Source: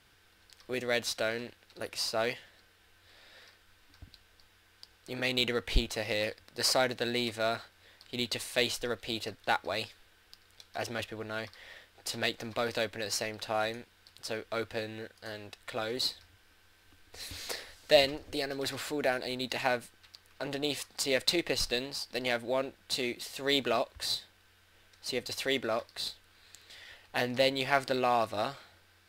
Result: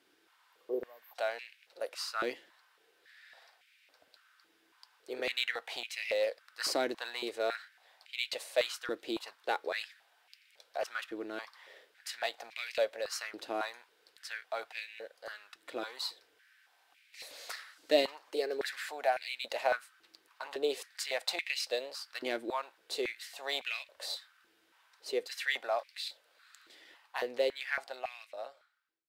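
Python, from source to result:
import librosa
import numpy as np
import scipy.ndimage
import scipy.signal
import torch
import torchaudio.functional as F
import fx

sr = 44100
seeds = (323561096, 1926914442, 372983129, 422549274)

y = fx.fade_out_tail(x, sr, length_s=2.45)
y = fx.spec_repair(y, sr, seeds[0], start_s=0.35, length_s=0.78, low_hz=1200.0, high_hz=12000.0, source='before')
y = fx.filter_held_highpass(y, sr, hz=3.6, low_hz=320.0, high_hz=2300.0)
y = y * 10.0 ** (-6.5 / 20.0)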